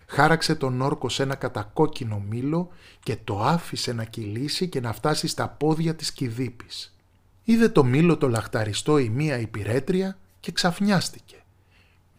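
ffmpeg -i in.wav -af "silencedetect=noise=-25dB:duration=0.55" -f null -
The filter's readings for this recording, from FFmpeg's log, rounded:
silence_start: 6.80
silence_end: 7.48 | silence_duration: 0.69
silence_start: 11.08
silence_end: 12.18 | silence_duration: 1.10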